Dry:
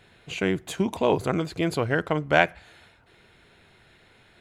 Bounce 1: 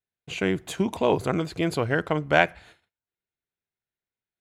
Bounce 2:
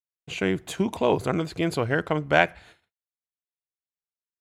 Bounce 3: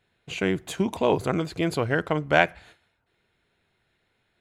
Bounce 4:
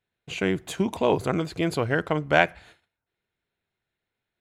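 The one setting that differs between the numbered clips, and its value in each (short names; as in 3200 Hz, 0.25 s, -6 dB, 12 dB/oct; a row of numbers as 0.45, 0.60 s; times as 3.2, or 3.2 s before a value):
gate, range: -40, -58, -15, -28 dB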